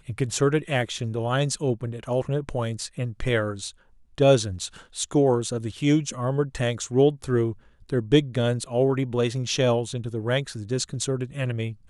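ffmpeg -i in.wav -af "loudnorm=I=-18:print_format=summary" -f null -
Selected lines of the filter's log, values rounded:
Input Integrated:    -25.3 LUFS
Input True Peak:      -6.3 dBTP
Input LRA:             2.8 LU
Input Threshold:     -35.4 LUFS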